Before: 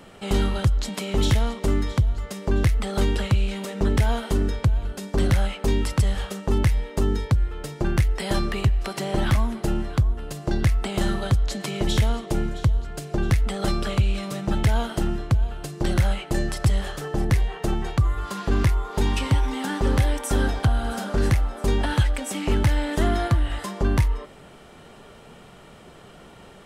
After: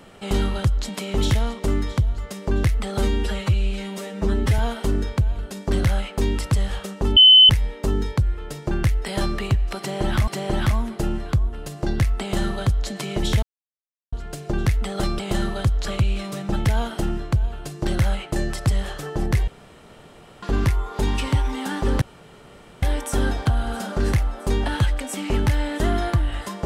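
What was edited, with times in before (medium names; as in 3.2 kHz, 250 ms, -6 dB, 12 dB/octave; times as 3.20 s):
2.98–4.05 s: stretch 1.5×
6.63 s: add tone 3.04 kHz -6.5 dBFS 0.33 s
8.92–9.41 s: loop, 2 plays
10.86–11.52 s: copy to 13.84 s
12.07–12.77 s: mute
17.46–18.41 s: room tone
20.00 s: insert room tone 0.81 s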